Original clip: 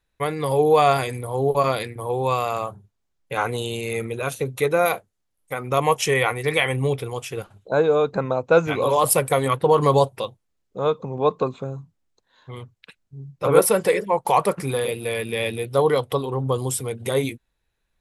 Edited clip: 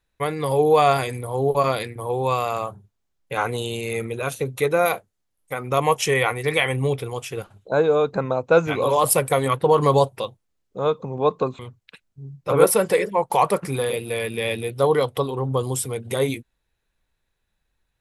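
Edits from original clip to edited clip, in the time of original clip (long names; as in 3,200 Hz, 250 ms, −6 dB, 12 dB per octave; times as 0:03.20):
0:11.59–0:12.54: remove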